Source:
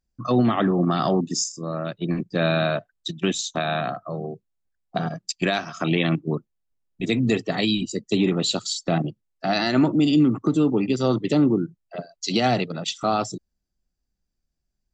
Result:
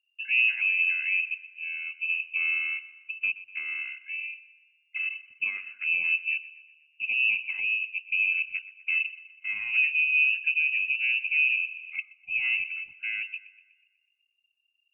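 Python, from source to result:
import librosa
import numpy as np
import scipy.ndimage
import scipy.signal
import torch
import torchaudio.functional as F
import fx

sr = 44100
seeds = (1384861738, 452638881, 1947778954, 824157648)

y = fx.level_steps(x, sr, step_db=13, at=(9.03, 9.47))
y = fx.curve_eq(y, sr, hz=(120.0, 690.0, 1900.0), db=(0, -13, -29))
y = fx.freq_invert(y, sr, carrier_hz=2800)
y = fx.echo_thinned(y, sr, ms=123, feedback_pct=51, hz=160.0, wet_db=-17.0)
y = fx.band_squash(y, sr, depth_pct=70, at=(11.47, 12.0))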